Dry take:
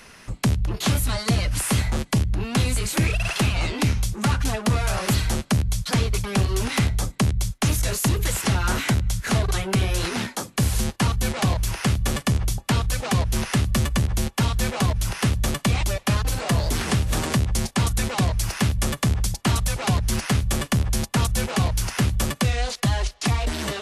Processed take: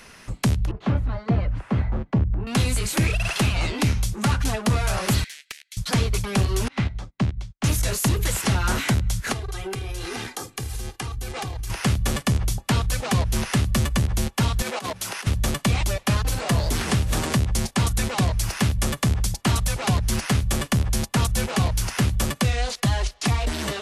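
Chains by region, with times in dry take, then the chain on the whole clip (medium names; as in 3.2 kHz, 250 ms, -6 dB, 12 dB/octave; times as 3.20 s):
0.71–2.47 s: low-pass 1.3 kHz + three bands expanded up and down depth 70%
5.24–5.77 s: steep high-pass 1.8 kHz 48 dB/octave + treble shelf 3.7 kHz -11.5 dB + loudspeaker Doppler distortion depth 0.43 ms
6.68–7.64 s: low-pass 3.6 kHz + peaking EQ 460 Hz -5 dB 0.28 oct + upward expansion 2.5:1, over -38 dBFS
9.32–11.70 s: comb 2.5 ms, depth 62% + compression 16:1, threshold -26 dBFS
14.62–15.27 s: high-pass 300 Hz + compressor with a negative ratio -29 dBFS, ratio -0.5
whole clip: none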